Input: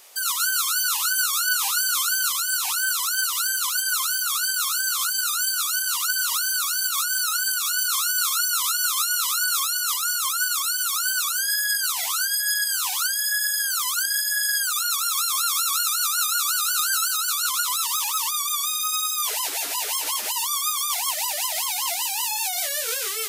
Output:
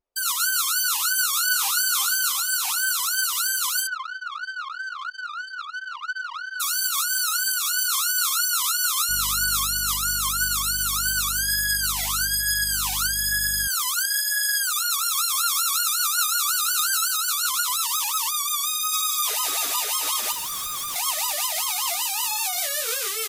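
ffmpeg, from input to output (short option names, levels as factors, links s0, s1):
-filter_complex "[0:a]asplit=2[s0][s1];[s1]afade=t=in:st=1:d=0.01,afade=t=out:st=1.7:d=0.01,aecho=0:1:360|720|1080|1440|1800:0.316228|0.158114|0.0790569|0.0395285|0.0197642[s2];[s0][s2]amix=inputs=2:normalize=0,asplit=3[s3][s4][s5];[s3]afade=t=out:st=3.86:d=0.02[s6];[s4]highpass=140,lowpass=2500,afade=t=in:st=3.86:d=0.02,afade=t=out:st=6.59:d=0.02[s7];[s5]afade=t=in:st=6.59:d=0.02[s8];[s6][s7][s8]amix=inputs=3:normalize=0,asettb=1/sr,asplit=3[s9][s10][s11];[s9]atrim=end=9.094[s12];[s10]atrim=start=9.09:end=13.68,asetpts=PTS-STARTPTS,afade=t=in:d=0.004:c=qsin,afade=t=out:st=4.586:d=0.004:c=qsin,aeval=exprs='val(0)+0.01*(sin(2*PI*50*n/s)+sin(2*PI*2*50*n/s)/2+sin(2*PI*3*50*n/s)/3+sin(2*PI*4*50*n/s)/4+sin(2*PI*5*50*n/s)/5)':c=same[s13];[s11]atrim=start=13.676[s14];[s12][s13]acrossfade=d=0.004:c1=hsin:c2=qsin[s15];[s15][s14]acrossfade=d=0.004:c1=qsin:c2=hsin,asplit=3[s16][s17][s18];[s16]afade=t=out:st=14.92:d=0.02[s19];[s17]aphaser=in_gain=1:out_gain=1:delay=1.6:decay=0.21:speed=1.2:type=triangular,afade=t=in:st=14.92:d=0.02,afade=t=out:st=16.99:d=0.02[s20];[s18]afade=t=in:st=16.99:d=0.02[s21];[s19][s20][s21]amix=inputs=3:normalize=0,asplit=2[s22][s23];[s23]afade=t=in:st=18.36:d=0.01,afade=t=out:st=19.25:d=0.01,aecho=0:1:550|1100|1650|2200|2750|3300|3850|4400|4950|5500|6050|6600:0.530884|0.424708|0.339766|0.271813|0.21745|0.17396|0.139168|0.111335|0.0890676|0.0712541|0.0570033|0.0456026[s24];[s22][s24]amix=inputs=2:normalize=0,asettb=1/sr,asplit=3[s25][s26][s27];[s25]atrim=end=20.324[s28];[s26]atrim=start=20.32:end=20.96,asetpts=PTS-STARTPTS,afade=t=in:d=0.004:c=qsin,afade=t=out:st=0.636:d=0.004:c=qsin,asoftclip=type=hard:threshold=0.0422[s29];[s27]atrim=start=20.956[s30];[s28][s29]acrossfade=d=0.004:c1=hsin:c2=qsin[s31];[s31][s30]acrossfade=d=0.004:c1=qsin:c2=hsin,anlmdn=25.1,lowshelf=f=170:g=5"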